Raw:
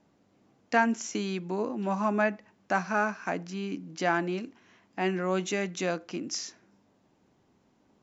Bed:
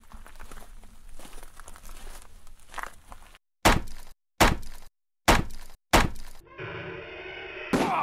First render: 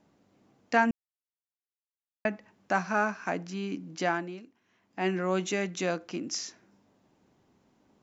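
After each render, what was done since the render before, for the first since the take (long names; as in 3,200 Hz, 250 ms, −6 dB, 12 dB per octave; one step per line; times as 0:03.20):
0:00.91–0:02.25: silence
0:04.03–0:05.07: duck −12.5 dB, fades 0.49 s quadratic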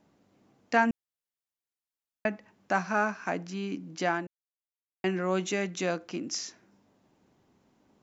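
0:04.27–0:05.04: silence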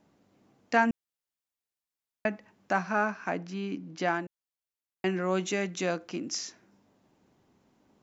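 0:02.73–0:04.08: high-frequency loss of the air 75 metres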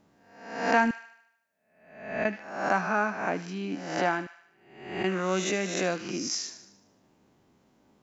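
peak hold with a rise ahead of every peak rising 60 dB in 0.74 s
delay with a high-pass on its return 75 ms, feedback 52%, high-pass 1,500 Hz, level −11 dB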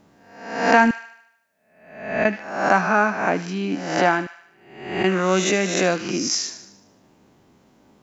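level +8.5 dB
brickwall limiter −1 dBFS, peak gain reduction 1.5 dB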